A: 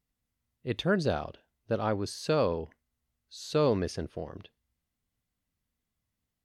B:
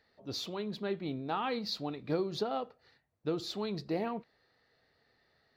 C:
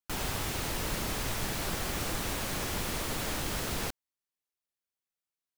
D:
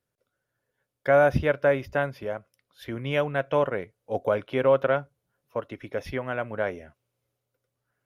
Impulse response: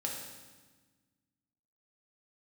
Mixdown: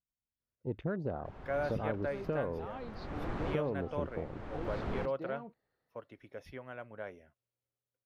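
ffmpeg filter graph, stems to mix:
-filter_complex "[0:a]afwtdn=0.0126,volume=1,asplit=2[s0][s1];[1:a]adelay=1300,volume=0.335[s2];[2:a]lowpass=1300,adelay=1150,volume=0.891[s3];[3:a]adelay=400,volume=0.168[s4];[s1]apad=whole_len=296626[s5];[s3][s5]sidechaincompress=threshold=0.00501:ratio=5:attack=42:release=546[s6];[s0][s2]amix=inputs=2:normalize=0,lowpass=f=1200:p=1,acompressor=threshold=0.0251:ratio=6,volume=1[s7];[s6][s4][s7]amix=inputs=3:normalize=0"

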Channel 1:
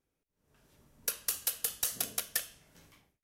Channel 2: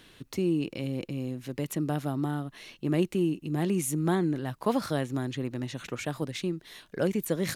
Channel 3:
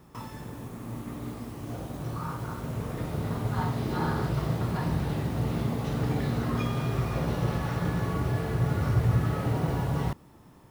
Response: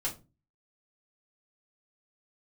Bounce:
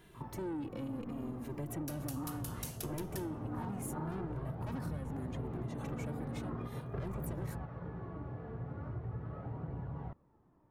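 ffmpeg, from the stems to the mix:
-filter_complex "[0:a]adelay=800,volume=0.299[s0];[1:a]equalizer=f=4100:w=0.63:g=-12,asoftclip=type=tanh:threshold=0.0266,asplit=2[s1][s2];[s2]adelay=2.5,afreqshift=-0.72[s3];[s1][s3]amix=inputs=2:normalize=1,volume=1.12,asplit=2[s4][s5];[2:a]lowpass=1300,flanger=delay=0.3:depth=4.1:regen=62:speed=0.41:shape=triangular,volume=0.841[s6];[s5]apad=whole_len=472305[s7];[s6][s7]sidechaingate=range=0.398:threshold=0.00178:ratio=16:detection=peak[s8];[s0][s4][s8]amix=inputs=3:normalize=0,acompressor=threshold=0.0158:ratio=6"

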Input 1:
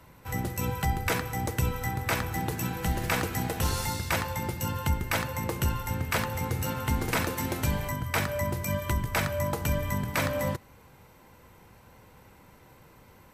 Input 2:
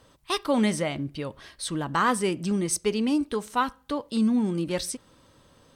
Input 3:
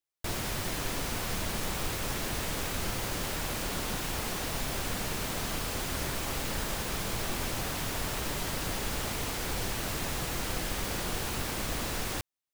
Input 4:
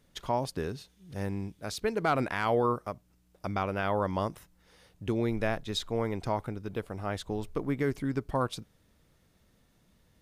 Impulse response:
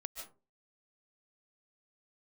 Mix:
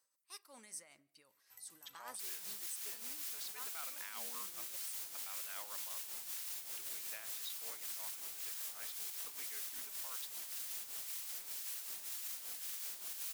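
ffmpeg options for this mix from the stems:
-filter_complex "[0:a]acompressor=threshold=0.0224:ratio=6,adelay=1250,volume=0.211[s0];[1:a]equalizer=f=3300:t=o:w=0.49:g=-14,volume=0.282,asplit=2[s1][s2];[s2]volume=0.158[s3];[2:a]acrossover=split=960[s4][s5];[s4]aeval=exprs='val(0)*(1-0.5/2+0.5/2*cos(2*PI*1.9*n/s))':c=same[s6];[s5]aeval=exprs='val(0)*(1-0.5/2-0.5/2*cos(2*PI*1.9*n/s))':c=same[s7];[s6][s7]amix=inputs=2:normalize=0,adelay=1950,volume=0.841[s8];[3:a]highpass=f=1000:p=1,lowpass=3800,adelay=1700,volume=1.26[s9];[4:a]atrim=start_sample=2205[s10];[s3][s10]afir=irnorm=-1:irlink=0[s11];[s0][s1][s8][s9][s11]amix=inputs=5:normalize=0,aderivative,tremolo=f=5.2:d=0.58,alimiter=level_in=2.99:limit=0.0631:level=0:latency=1:release=33,volume=0.335"

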